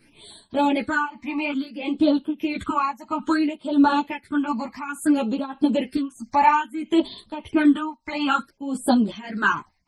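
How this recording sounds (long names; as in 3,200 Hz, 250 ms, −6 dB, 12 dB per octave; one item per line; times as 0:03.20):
phaser sweep stages 8, 0.59 Hz, lowest notch 430–2,100 Hz
tremolo triangle 1.6 Hz, depth 90%
a shimmering, thickened sound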